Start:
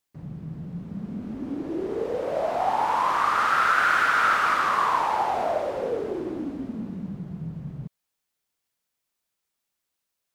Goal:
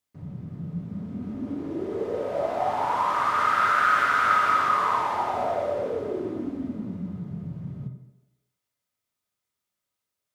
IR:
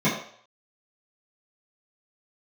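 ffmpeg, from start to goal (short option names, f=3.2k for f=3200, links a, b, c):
-filter_complex "[0:a]asplit=2[a][b];[1:a]atrim=start_sample=2205,asetrate=25137,aresample=44100,lowshelf=f=290:g=-7[c];[b][c]afir=irnorm=-1:irlink=0,volume=-19dB[d];[a][d]amix=inputs=2:normalize=0,volume=-4.5dB"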